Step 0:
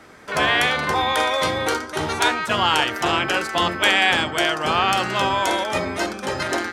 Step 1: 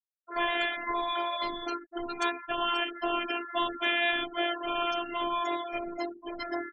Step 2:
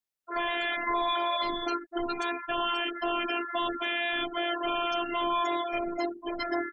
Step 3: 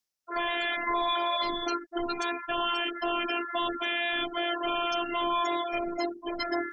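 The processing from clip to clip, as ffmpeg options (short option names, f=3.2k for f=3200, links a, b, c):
-af "afftfilt=real='re*gte(hypot(re,im),0.112)':imag='im*gte(hypot(re,im),0.112)':win_size=1024:overlap=0.75,afftfilt=real='hypot(re,im)*cos(PI*b)':imag='0':win_size=512:overlap=0.75,volume=-6.5dB"
-af "alimiter=limit=-22.5dB:level=0:latency=1:release=24,volume=4.5dB"
-af "equalizer=f=5.5k:w=2.1:g=8.5,areverse,acompressor=mode=upward:threshold=-39dB:ratio=2.5,areverse"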